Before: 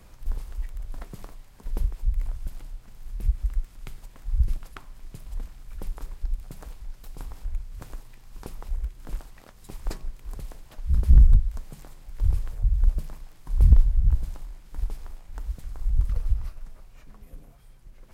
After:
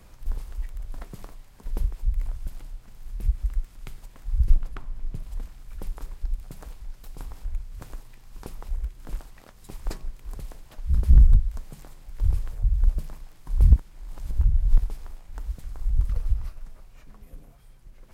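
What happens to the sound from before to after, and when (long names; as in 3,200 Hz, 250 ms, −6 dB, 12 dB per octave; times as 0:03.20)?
0:04.50–0:05.23: spectral tilt −2 dB per octave
0:13.76–0:14.78: reverse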